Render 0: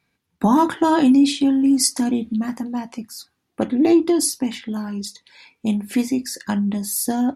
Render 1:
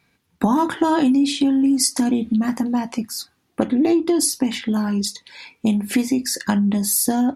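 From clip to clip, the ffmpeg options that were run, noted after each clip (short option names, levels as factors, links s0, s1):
-af "acompressor=threshold=0.0708:ratio=4,volume=2.24"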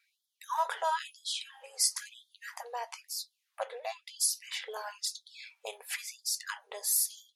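-af "afftfilt=real='re*gte(b*sr/1024,390*pow(3200/390,0.5+0.5*sin(2*PI*1*pts/sr)))':imag='im*gte(b*sr/1024,390*pow(3200/390,0.5+0.5*sin(2*PI*1*pts/sr)))':win_size=1024:overlap=0.75,volume=0.398"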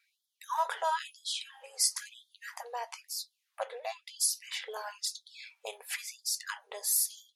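-af anull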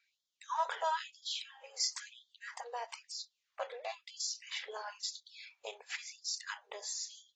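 -af "volume=0.708" -ar 32000 -c:a aac -b:a 24k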